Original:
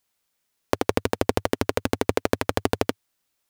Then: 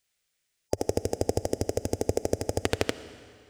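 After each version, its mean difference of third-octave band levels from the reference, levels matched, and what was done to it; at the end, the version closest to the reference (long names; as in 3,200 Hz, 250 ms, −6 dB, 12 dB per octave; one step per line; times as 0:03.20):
5.5 dB: gain on a spectral selection 0:00.68–0:02.61, 870–4,800 Hz −16 dB
graphic EQ with 10 bands 250 Hz −7 dB, 1,000 Hz −10 dB, 2,000 Hz +3 dB, 8,000 Hz +4 dB, 16,000 Hz −9 dB
comb and all-pass reverb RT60 2.2 s, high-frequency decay 0.95×, pre-delay 30 ms, DRR 13.5 dB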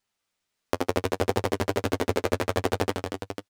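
2.0 dB: running median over 3 samples
flanger 0.67 Hz, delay 9.8 ms, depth 1.7 ms, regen +21%
multi-tap delay 72/227/489 ms −9.5/−6.5/−8 dB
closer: second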